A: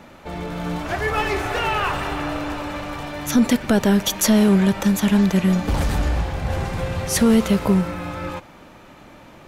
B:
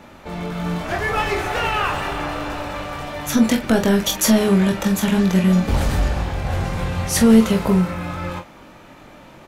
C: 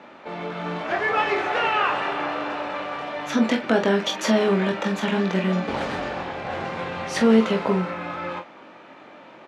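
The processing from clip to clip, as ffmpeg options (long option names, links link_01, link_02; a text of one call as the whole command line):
ffmpeg -i in.wav -af "aecho=1:1:22|45:0.531|0.335" out.wav
ffmpeg -i in.wav -af "highpass=290,lowpass=3400" out.wav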